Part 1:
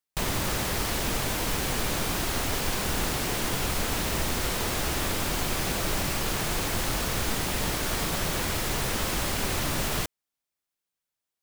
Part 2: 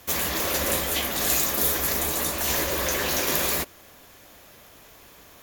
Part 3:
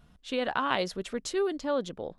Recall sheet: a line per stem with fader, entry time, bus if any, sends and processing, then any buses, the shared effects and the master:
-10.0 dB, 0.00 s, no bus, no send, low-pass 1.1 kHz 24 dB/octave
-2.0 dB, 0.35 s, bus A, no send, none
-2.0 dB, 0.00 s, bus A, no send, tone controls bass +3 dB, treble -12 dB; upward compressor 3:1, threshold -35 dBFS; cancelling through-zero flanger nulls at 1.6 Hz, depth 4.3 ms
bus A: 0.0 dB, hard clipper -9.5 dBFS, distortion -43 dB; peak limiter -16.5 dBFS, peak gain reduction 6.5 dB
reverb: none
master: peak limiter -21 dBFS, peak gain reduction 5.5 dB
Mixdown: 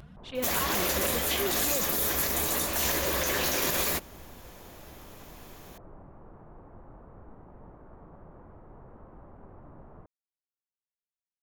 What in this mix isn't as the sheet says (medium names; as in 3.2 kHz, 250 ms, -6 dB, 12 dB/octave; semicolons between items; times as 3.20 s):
stem 1 -10.0 dB -> -19.0 dB; master: missing peak limiter -21 dBFS, peak gain reduction 5.5 dB